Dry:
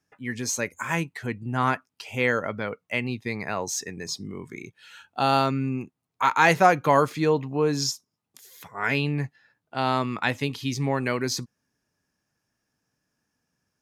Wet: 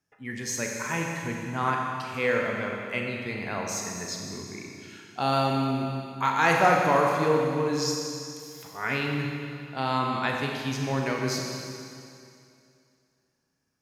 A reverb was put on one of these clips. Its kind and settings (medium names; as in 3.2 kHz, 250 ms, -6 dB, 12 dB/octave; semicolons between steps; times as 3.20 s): Schroeder reverb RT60 2.5 s, combs from 30 ms, DRR 0 dB; trim -4.5 dB